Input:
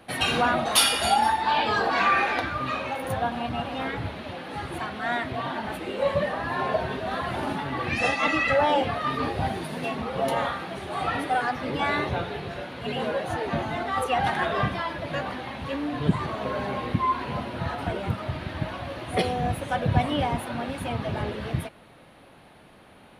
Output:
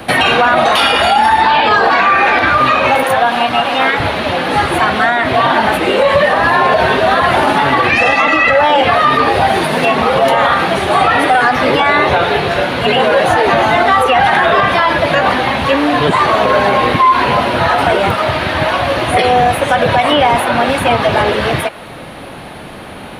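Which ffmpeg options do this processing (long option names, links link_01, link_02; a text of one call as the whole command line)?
ffmpeg -i in.wav -filter_complex "[0:a]asettb=1/sr,asplit=3[link_01][link_02][link_03];[link_01]atrim=end=3.034[link_04];[link_02]atrim=start=3.03:end=4,asetpts=PTS-STARTPTS,afade=type=in:duration=0.004:curve=qsin,afade=type=out:start_time=0.966:duration=0.004:curve=qsin,highpass=frequency=830:poles=1[link_05];[link_03]atrim=start=3.996[link_06];[link_04][link_05]acrossfade=duration=0.004:curve1=hsin:curve2=qsin[link_07];[link_07][link_06]acrossfade=duration=0.004:curve1=qsin:curve2=hsin,acrossover=split=400|1200|3400[link_08][link_09][link_10][link_11];[link_08]acompressor=threshold=-43dB:ratio=4[link_12];[link_09]acompressor=threshold=-28dB:ratio=4[link_13];[link_10]acompressor=threshold=-29dB:ratio=4[link_14];[link_11]acompressor=threshold=-50dB:ratio=4[link_15];[link_12][link_13][link_14][link_15]amix=inputs=4:normalize=0,alimiter=level_in=23dB:limit=-1dB:release=50:level=0:latency=1,volume=-1dB" out.wav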